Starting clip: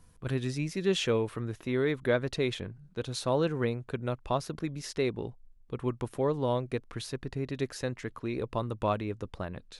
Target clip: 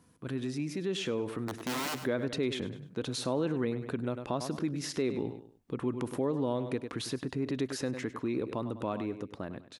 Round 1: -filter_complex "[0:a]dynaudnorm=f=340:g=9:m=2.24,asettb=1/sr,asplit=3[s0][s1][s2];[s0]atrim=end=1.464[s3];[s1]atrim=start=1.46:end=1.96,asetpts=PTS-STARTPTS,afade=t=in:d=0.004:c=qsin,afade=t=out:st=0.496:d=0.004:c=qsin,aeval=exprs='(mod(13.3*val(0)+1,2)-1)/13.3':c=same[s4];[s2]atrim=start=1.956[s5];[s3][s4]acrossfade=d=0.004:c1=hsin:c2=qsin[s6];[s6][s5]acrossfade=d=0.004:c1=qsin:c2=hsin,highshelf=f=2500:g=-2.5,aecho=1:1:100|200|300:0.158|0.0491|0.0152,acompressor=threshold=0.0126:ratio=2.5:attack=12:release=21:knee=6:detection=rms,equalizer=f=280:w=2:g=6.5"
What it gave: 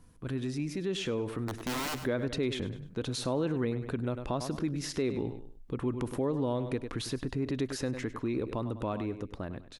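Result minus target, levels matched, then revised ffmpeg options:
125 Hz band +2.5 dB
-filter_complex "[0:a]dynaudnorm=f=340:g=9:m=2.24,asettb=1/sr,asplit=3[s0][s1][s2];[s0]atrim=end=1.464[s3];[s1]atrim=start=1.46:end=1.96,asetpts=PTS-STARTPTS,afade=t=in:d=0.004:c=qsin,afade=t=out:st=0.496:d=0.004:c=qsin,aeval=exprs='(mod(13.3*val(0)+1,2)-1)/13.3':c=same[s4];[s2]atrim=start=1.956[s5];[s3][s4]acrossfade=d=0.004:c1=hsin:c2=qsin[s6];[s6][s5]acrossfade=d=0.004:c1=qsin:c2=hsin,highshelf=f=2500:g=-2.5,aecho=1:1:100|200|300:0.158|0.0491|0.0152,acompressor=threshold=0.0126:ratio=2.5:attack=12:release=21:knee=6:detection=rms,highpass=130,equalizer=f=280:w=2:g=6.5"

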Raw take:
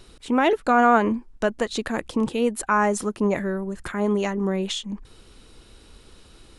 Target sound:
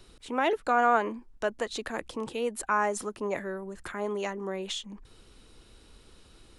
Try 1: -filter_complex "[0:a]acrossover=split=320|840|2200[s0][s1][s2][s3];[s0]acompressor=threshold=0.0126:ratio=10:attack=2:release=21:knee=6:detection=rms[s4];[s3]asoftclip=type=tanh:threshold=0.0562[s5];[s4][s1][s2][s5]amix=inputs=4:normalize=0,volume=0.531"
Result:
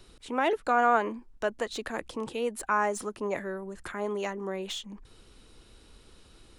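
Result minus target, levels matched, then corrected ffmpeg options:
saturation: distortion +18 dB
-filter_complex "[0:a]acrossover=split=320|840|2200[s0][s1][s2][s3];[s0]acompressor=threshold=0.0126:ratio=10:attack=2:release=21:knee=6:detection=rms[s4];[s3]asoftclip=type=tanh:threshold=0.211[s5];[s4][s1][s2][s5]amix=inputs=4:normalize=0,volume=0.531"

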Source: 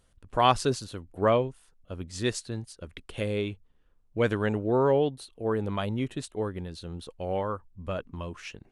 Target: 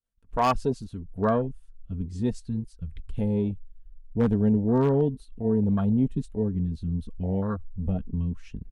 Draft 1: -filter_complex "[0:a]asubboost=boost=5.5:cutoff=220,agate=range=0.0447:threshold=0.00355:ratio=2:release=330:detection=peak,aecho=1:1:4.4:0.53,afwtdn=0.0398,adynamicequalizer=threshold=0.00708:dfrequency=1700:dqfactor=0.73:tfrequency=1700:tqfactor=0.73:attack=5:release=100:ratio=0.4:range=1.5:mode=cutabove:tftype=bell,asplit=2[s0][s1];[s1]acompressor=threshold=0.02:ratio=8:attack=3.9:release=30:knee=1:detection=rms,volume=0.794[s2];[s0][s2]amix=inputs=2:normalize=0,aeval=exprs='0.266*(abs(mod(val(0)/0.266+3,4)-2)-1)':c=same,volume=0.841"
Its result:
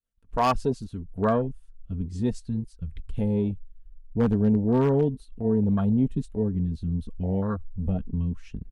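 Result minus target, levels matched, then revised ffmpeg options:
compression: peak gain reduction -5.5 dB
-filter_complex "[0:a]asubboost=boost=5.5:cutoff=220,agate=range=0.0447:threshold=0.00355:ratio=2:release=330:detection=peak,aecho=1:1:4.4:0.53,afwtdn=0.0398,adynamicequalizer=threshold=0.00708:dfrequency=1700:dqfactor=0.73:tfrequency=1700:tqfactor=0.73:attack=5:release=100:ratio=0.4:range=1.5:mode=cutabove:tftype=bell,asplit=2[s0][s1];[s1]acompressor=threshold=0.01:ratio=8:attack=3.9:release=30:knee=1:detection=rms,volume=0.794[s2];[s0][s2]amix=inputs=2:normalize=0,aeval=exprs='0.266*(abs(mod(val(0)/0.266+3,4)-2)-1)':c=same,volume=0.841"

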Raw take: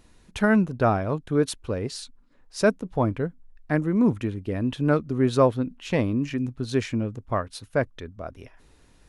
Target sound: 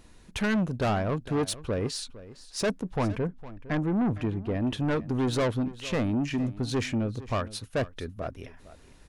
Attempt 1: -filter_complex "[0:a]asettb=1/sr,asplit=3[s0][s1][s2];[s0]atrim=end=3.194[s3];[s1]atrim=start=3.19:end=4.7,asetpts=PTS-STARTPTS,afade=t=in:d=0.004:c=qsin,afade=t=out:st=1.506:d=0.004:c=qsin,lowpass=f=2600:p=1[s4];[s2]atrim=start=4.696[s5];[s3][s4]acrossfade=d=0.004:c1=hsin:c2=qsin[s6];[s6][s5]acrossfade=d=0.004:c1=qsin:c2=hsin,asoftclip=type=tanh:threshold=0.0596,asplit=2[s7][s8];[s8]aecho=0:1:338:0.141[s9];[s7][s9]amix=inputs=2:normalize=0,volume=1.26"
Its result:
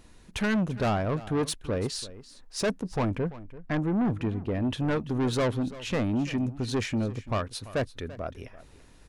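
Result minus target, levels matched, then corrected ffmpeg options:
echo 120 ms early
-filter_complex "[0:a]asettb=1/sr,asplit=3[s0][s1][s2];[s0]atrim=end=3.194[s3];[s1]atrim=start=3.19:end=4.7,asetpts=PTS-STARTPTS,afade=t=in:d=0.004:c=qsin,afade=t=out:st=1.506:d=0.004:c=qsin,lowpass=f=2600:p=1[s4];[s2]atrim=start=4.696[s5];[s3][s4]acrossfade=d=0.004:c1=hsin:c2=qsin[s6];[s6][s5]acrossfade=d=0.004:c1=qsin:c2=hsin,asoftclip=type=tanh:threshold=0.0596,asplit=2[s7][s8];[s8]aecho=0:1:458:0.141[s9];[s7][s9]amix=inputs=2:normalize=0,volume=1.26"

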